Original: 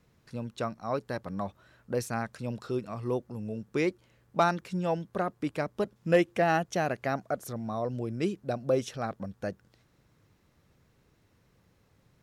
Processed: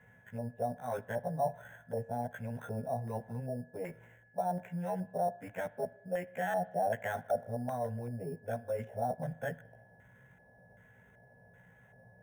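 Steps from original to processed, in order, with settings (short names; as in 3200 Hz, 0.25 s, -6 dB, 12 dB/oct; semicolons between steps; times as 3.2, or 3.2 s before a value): short-time reversal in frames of 34 ms; HPF 98 Hz; bell 250 Hz +3 dB; reverse; compressor 8:1, threshold -40 dBFS, peak gain reduction 20.5 dB; reverse; limiter -36 dBFS, peak gain reduction 6 dB; LFO low-pass square 1.3 Hz 710–1600 Hz; in parallel at -6.5 dB: sample-and-hold 9×; on the sum: fixed phaser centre 1200 Hz, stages 6; whine 1700 Hz -71 dBFS; spring tank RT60 1 s, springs 37/50 ms, chirp 60 ms, DRR 19 dB; gain +7 dB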